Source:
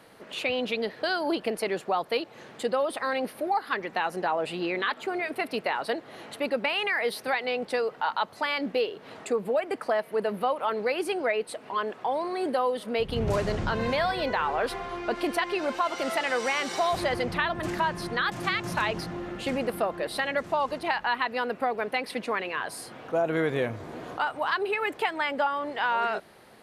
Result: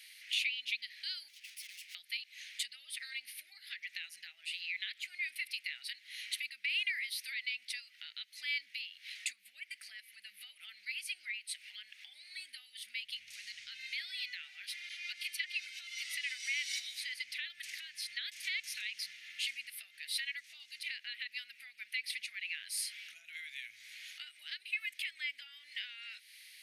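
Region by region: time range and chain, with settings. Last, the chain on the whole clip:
0:01.28–0:01.95: lower of the sound and its delayed copy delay 0.39 ms + Butterworth high-pass 330 Hz 72 dB per octave + tube saturation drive 49 dB, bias 0.5
0:14.89–0:15.60: mains-hum notches 50/100/150/200/250/300/350/400/450/500 Hz + all-pass dispersion lows, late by 47 ms, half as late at 1,300 Hz
whole clip: notch filter 7,500 Hz, Q 9.4; downward compressor, threshold −36 dBFS; elliptic high-pass filter 2,100 Hz, stop band 50 dB; level +7 dB

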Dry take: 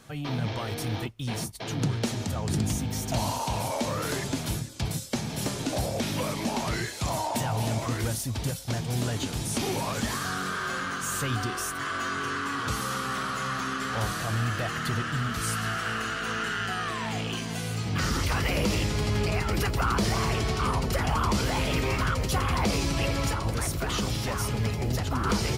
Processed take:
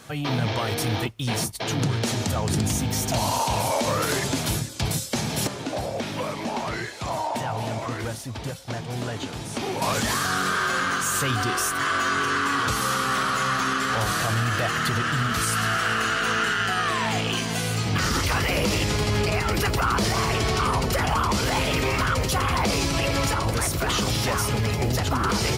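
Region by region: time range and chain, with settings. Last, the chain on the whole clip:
0:05.47–0:09.82: high-pass filter 1,400 Hz 6 dB per octave + spectral tilt −4.5 dB per octave
whole clip: high-pass filter 81 Hz 6 dB per octave; parametric band 200 Hz −3 dB 1.7 octaves; brickwall limiter −22.5 dBFS; level +8 dB

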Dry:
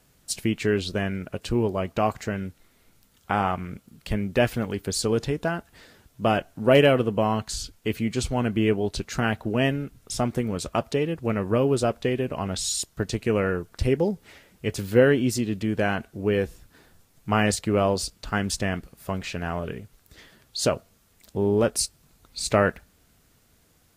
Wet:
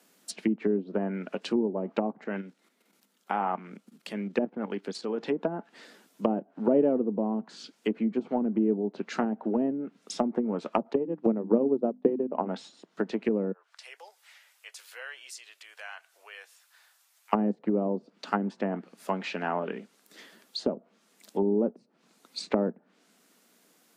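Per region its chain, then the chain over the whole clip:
0:02.24–0:05.25: high-shelf EQ 4,900 Hz −3 dB + output level in coarse steps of 10 dB
0:10.93–0:12.47: transient designer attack +9 dB, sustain −11 dB + mains-hum notches 50/100/150/200/250/300 Hz
0:13.52–0:17.33: Bessel high-pass filter 1,200 Hz, order 6 + downward compressor 1.5 to 1, threshold −58 dBFS
whole clip: Butterworth high-pass 190 Hz 48 dB per octave; treble cut that deepens with the level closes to 360 Hz, closed at −21.5 dBFS; dynamic equaliser 870 Hz, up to +7 dB, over −51 dBFS, Q 4.5

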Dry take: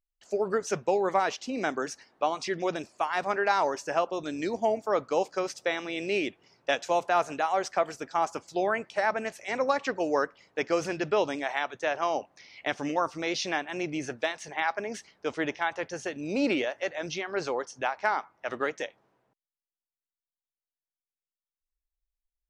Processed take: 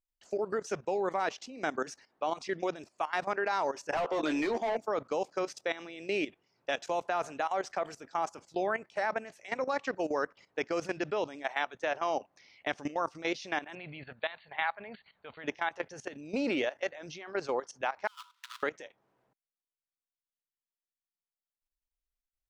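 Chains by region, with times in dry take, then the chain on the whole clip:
0:03.93–0:04.77: Butterworth high-pass 220 Hz + mid-hump overdrive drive 24 dB, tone 2,300 Hz, clips at −13 dBFS + double-tracking delay 13 ms −6.5 dB
0:13.75–0:15.44: linear-phase brick-wall low-pass 4,600 Hz + parametric band 330 Hz −13 dB 0.99 octaves
0:18.07–0:18.63: each half-wave held at its own peak + compressor whose output falls as the input rises −32 dBFS, ratio −0.5 + Chebyshev high-pass with heavy ripple 950 Hz, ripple 9 dB
whole clip: high-shelf EQ 7,600 Hz −3 dB; output level in coarse steps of 15 dB

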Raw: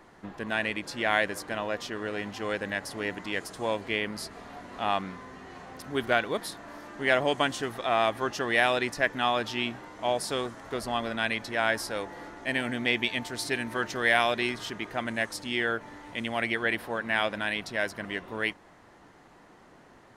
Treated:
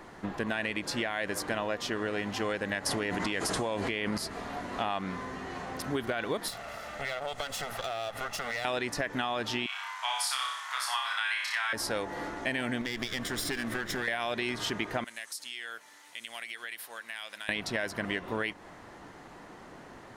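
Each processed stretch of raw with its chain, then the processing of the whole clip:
0:02.86–0:04.18: linear-phase brick-wall low-pass 12,000 Hz + envelope flattener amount 70%
0:06.48–0:08.65: lower of the sound and its delayed copy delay 1.5 ms + low-shelf EQ 370 Hz −5 dB + downward compressor, threshold −37 dBFS
0:09.66–0:11.73: Butterworth high-pass 960 Hz + flutter between parallel walls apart 5.2 metres, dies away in 0.58 s
0:12.81–0:14.08: lower of the sound and its delayed copy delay 0.57 ms + downward compressor, threshold −34 dBFS
0:15.04–0:17.49: first difference + downward compressor 5 to 1, threshold −41 dBFS
whole clip: brickwall limiter −19.5 dBFS; downward compressor, threshold −34 dBFS; level +6 dB

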